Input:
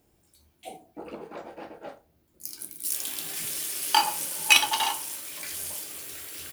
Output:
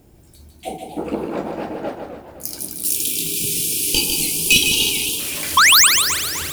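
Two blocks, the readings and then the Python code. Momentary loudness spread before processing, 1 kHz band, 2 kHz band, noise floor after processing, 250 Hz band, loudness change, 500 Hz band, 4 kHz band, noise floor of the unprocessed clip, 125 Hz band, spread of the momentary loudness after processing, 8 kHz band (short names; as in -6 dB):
24 LU, +6.0 dB, +10.5 dB, -49 dBFS, +18.0 dB, +11.0 dB, +14.0 dB, +11.0 dB, -67 dBFS, +20.0 dB, 20 LU, +13.0 dB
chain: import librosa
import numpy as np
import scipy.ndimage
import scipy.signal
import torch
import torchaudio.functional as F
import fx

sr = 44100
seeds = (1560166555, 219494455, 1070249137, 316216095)

p1 = fx.spec_paint(x, sr, seeds[0], shape='rise', start_s=5.57, length_s=0.3, low_hz=1000.0, high_hz=9200.0, level_db=-10.0)
p2 = fx.fold_sine(p1, sr, drive_db=14, ceiling_db=-1.5)
p3 = p1 + F.gain(torch.from_numpy(p2), -10.0).numpy()
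p4 = fx.low_shelf(p3, sr, hz=400.0, db=9.5)
p5 = fx.spec_box(p4, sr, start_s=2.6, length_s=2.59, low_hz=500.0, high_hz=2300.0, gain_db=-28)
p6 = fx.quant_companded(p5, sr, bits=8)
p7 = p6 + fx.echo_feedback(p6, sr, ms=152, feedback_pct=34, wet_db=-6.0, dry=0)
p8 = fx.echo_warbled(p7, sr, ms=260, feedback_pct=47, rate_hz=2.8, cents=220, wet_db=-10.0)
y = F.gain(torch.from_numpy(p8), -1.0).numpy()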